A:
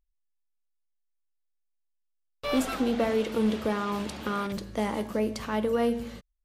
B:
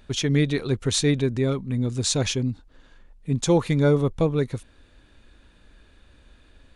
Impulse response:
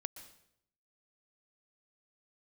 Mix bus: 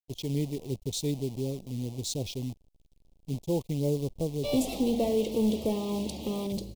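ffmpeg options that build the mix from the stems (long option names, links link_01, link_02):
-filter_complex "[0:a]asoftclip=type=tanh:threshold=-19.5dB,adelay=2000,volume=-0.5dB,asplit=2[link_01][link_02];[link_02]volume=-9dB[link_03];[1:a]afwtdn=0.0224,agate=range=-33dB:threshold=-51dB:ratio=3:detection=peak,acrusher=bits=6:dc=4:mix=0:aa=0.000001,volume=-9.5dB[link_04];[2:a]atrim=start_sample=2205[link_05];[link_03][link_05]afir=irnorm=-1:irlink=0[link_06];[link_01][link_04][link_06]amix=inputs=3:normalize=0,acrusher=bits=5:mode=log:mix=0:aa=0.000001,asuperstop=centerf=1500:order=4:qfactor=0.65"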